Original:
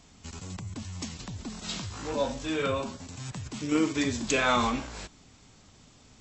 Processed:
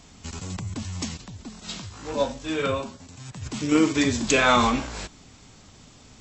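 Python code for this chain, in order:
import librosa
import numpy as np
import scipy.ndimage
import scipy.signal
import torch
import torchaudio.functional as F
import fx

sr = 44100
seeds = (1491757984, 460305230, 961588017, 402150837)

y = fx.upward_expand(x, sr, threshold_db=-39.0, expansion=1.5, at=(1.16, 3.41), fade=0.02)
y = y * 10.0 ** (6.0 / 20.0)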